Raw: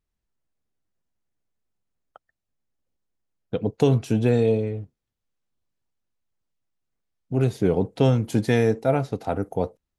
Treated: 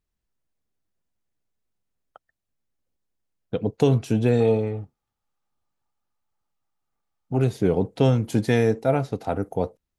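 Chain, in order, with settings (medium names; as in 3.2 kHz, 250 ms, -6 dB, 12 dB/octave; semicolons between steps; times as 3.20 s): 4.40–7.37 s: small resonant body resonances 850/1200 Hz, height 14 dB, ringing for 25 ms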